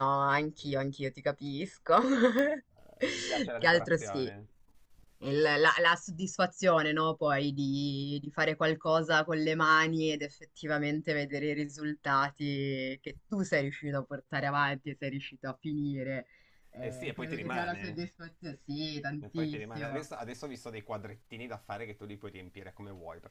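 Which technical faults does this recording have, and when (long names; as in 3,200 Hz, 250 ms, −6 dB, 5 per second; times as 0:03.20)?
0:02.39: click −18 dBFS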